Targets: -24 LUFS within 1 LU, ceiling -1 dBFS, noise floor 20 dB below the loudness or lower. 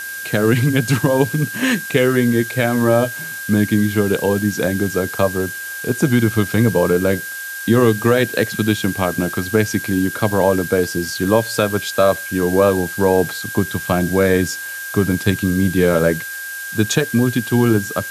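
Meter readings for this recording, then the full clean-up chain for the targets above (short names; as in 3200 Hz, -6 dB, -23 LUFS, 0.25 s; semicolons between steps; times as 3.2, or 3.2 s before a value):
steady tone 1600 Hz; tone level -27 dBFS; noise floor -29 dBFS; noise floor target -38 dBFS; loudness -17.5 LUFS; peak -2.0 dBFS; loudness target -24.0 LUFS
-> notch 1600 Hz, Q 30; denoiser 9 dB, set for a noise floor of -29 dBFS; gain -6.5 dB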